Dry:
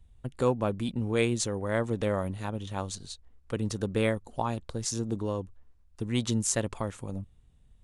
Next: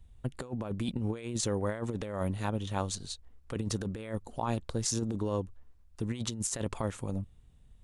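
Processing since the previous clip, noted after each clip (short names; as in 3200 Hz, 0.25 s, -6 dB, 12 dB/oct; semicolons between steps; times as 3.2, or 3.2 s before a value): negative-ratio compressor -31 dBFS, ratio -0.5; gain -1 dB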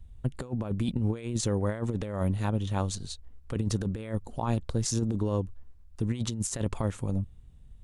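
low shelf 240 Hz +7.5 dB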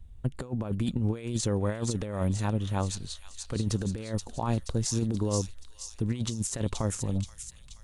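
thin delay 0.478 s, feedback 53%, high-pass 3200 Hz, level -3 dB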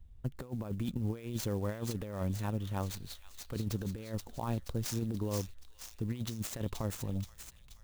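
clock jitter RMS 0.023 ms; gain -6.5 dB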